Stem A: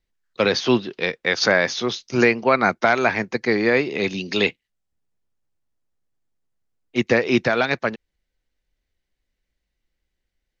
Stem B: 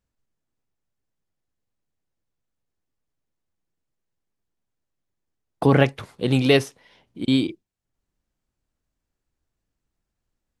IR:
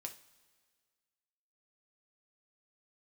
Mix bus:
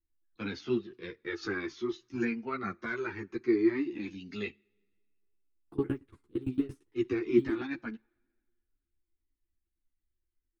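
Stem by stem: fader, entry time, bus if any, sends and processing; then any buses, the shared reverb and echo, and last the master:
−5.0 dB, 0.00 s, send −12 dB, flanger whose copies keep moving one way falling 0.54 Hz
−4.0 dB, 0.10 s, send −22 dB, Chebyshev low-pass filter 6,100 Hz, order 2; de-essing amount 95%; tremolo with a ramp in dB decaying 8.8 Hz, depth 26 dB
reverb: on, pre-delay 3 ms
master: drawn EQ curve 110 Hz 0 dB, 190 Hz −6 dB, 340 Hz +9 dB, 570 Hz −20 dB, 1,200 Hz −5 dB, 6,000 Hz −14 dB, 9,100 Hz +2 dB; string-ensemble chorus

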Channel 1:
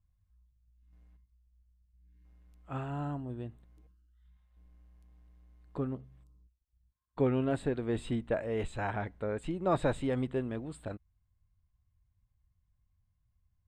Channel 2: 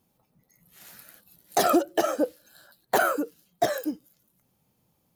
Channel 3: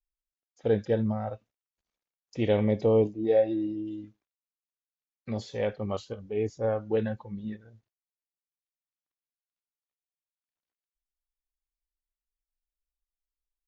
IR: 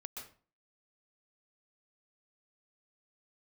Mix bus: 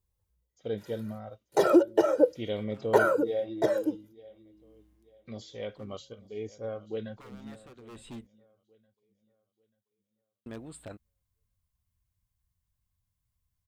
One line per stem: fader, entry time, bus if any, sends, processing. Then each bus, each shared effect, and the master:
−2.5 dB, 0.00 s, muted 0:08.27–0:10.46, no send, no echo send, low-shelf EQ 140 Hz −5.5 dB; wave folding −30.5 dBFS; automatic ducking −14 dB, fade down 0.35 s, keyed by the third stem
+2.0 dB, 0.00 s, no send, no echo send, noise gate −52 dBFS, range −23 dB; resonant band-pass 290 Hz, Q 0.56; comb filter 2.1 ms, depth 86%
−8.5 dB, 0.00 s, no send, echo send −20 dB, parametric band 3,400 Hz +9 dB 0.25 octaves; notch comb filter 860 Hz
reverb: not used
echo: repeating echo 888 ms, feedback 32%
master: high-shelf EQ 4,800 Hz +10.5 dB

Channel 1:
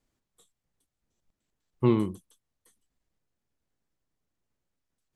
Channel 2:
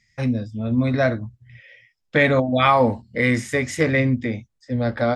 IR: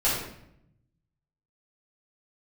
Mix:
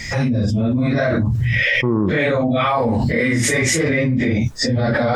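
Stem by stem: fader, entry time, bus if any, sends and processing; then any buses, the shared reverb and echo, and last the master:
−4.0 dB, 0.00 s, no send, Butterworth low-pass 1,700 Hz 96 dB per octave
−4.0 dB, 0.00 s, no send, random phases in long frames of 100 ms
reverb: not used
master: envelope flattener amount 100%

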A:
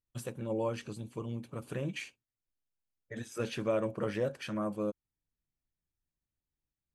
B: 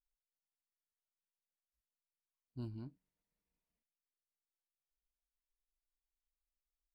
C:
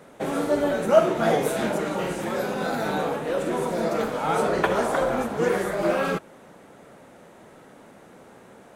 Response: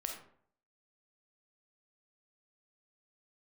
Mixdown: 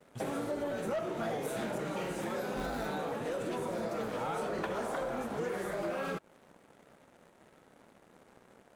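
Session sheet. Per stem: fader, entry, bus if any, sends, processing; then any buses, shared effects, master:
−14.5 dB, 0.00 s, no send, leveller curve on the samples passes 1
+3.0 dB, 0.00 s, no send, lower of the sound and its delayed copy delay 9.7 ms; ring modulator with a square carrier 160 Hz
−11.0 dB, 0.00 s, no send, no processing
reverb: not used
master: noise gate with hold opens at −54 dBFS; leveller curve on the samples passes 2; downward compressor, threshold −33 dBFS, peak gain reduction 13 dB

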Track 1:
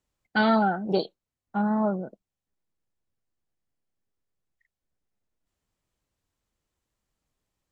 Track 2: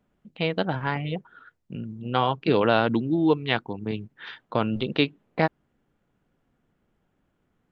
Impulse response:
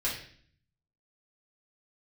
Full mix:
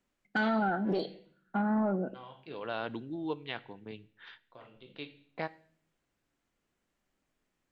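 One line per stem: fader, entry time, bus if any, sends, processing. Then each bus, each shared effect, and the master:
+1.5 dB, 0.00 s, send −18.5 dB, octave-band graphic EQ 125/250/500/1,000/4,000 Hz −6/+5/−5/−7/−4 dB; downward compressor, threshold −25 dBFS, peak gain reduction 7 dB; mid-hump overdrive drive 12 dB, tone 1,900 Hz, clips at −16.5 dBFS
−12.0 dB, 0.00 s, send −21.5 dB, low-shelf EQ 260 Hz −8 dB; automatic ducking −24 dB, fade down 0.25 s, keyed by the first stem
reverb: on, RT60 0.50 s, pre-delay 3 ms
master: brickwall limiter −22 dBFS, peak gain reduction 6 dB

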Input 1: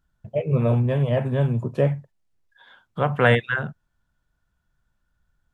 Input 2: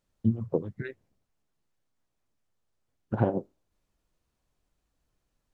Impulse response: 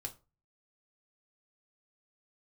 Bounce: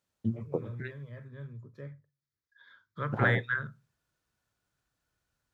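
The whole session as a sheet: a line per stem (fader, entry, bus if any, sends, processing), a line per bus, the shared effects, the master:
0:01.97 −19 dB → 0:02.25 −7 dB, 0.00 s, send −6.5 dB, phaser with its sweep stopped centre 2,800 Hz, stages 6
−0.5 dB, 0.00 s, muted 0:01.25–0:02.96, no send, no processing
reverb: on, RT60 0.30 s, pre-delay 3 ms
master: high-pass filter 100 Hz 12 dB per octave; parametric band 260 Hz −5.5 dB 2.8 octaves

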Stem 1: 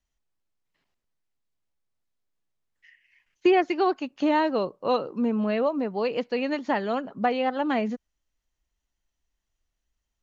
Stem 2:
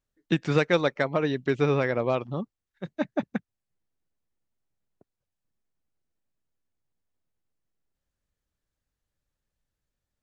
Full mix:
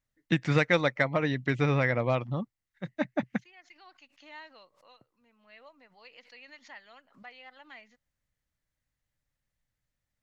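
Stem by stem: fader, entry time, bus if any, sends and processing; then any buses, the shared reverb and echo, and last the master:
−15.0 dB, 0.00 s, no send, resonant band-pass 4,700 Hz, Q 0.61; background raised ahead of every attack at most 140 dB per second; automatic ducking −13 dB, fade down 0.20 s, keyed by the second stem
−1.5 dB, 0.00 s, no send, no processing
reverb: not used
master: thirty-one-band graphic EQ 125 Hz +6 dB, 400 Hz −8 dB, 2,000 Hz +8 dB

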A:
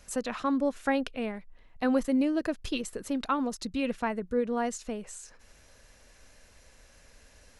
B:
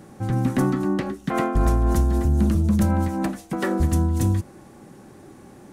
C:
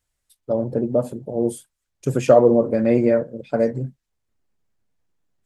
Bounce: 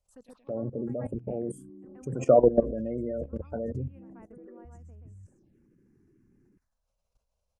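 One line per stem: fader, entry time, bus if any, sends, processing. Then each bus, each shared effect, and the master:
−12.0 dB, 0.00 s, no send, echo send −4.5 dB, high-shelf EQ 2,600 Hz −8.5 dB; automatic ducking −18 dB, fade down 1.10 s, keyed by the third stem
−7.5 dB, 0.85 s, no send, no echo send, spectral envelope exaggerated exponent 3; downward compressor 20 to 1, threshold −25 dBFS, peak gain reduction 11 dB
−1.5 dB, 0.00 s, no send, no echo send, gate on every frequency bin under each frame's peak −25 dB strong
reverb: not used
echo: single-tap delay 128 ms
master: phaser swept by the level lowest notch 260 Hz, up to 3,900 Hz, full sweep at −39.5 dBFS; output level in coarse steps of 16 dB

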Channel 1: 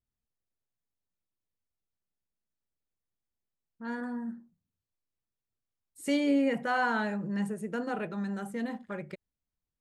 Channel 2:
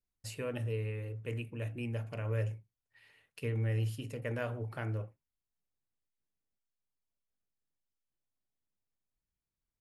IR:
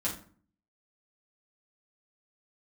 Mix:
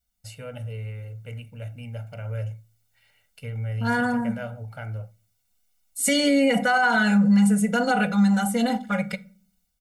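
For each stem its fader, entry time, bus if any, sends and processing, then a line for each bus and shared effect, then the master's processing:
−1.0 dB, 0.00 s, send −17 dB, high-shelf EQ 2,700 Hz +10 dB; comb filter 4.1 ms, depth 92%; automatic gain control gain up to 6.5 dB
−2.0 dB, 0.00 s, send −23.5 dB, no processing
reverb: on, RT60 0.45 s, pre-delay 5 ms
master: comb filter 1.4 ms, depth 99%; brickwall limiter −12 dBFS, peak gain reduction 11.5 dB

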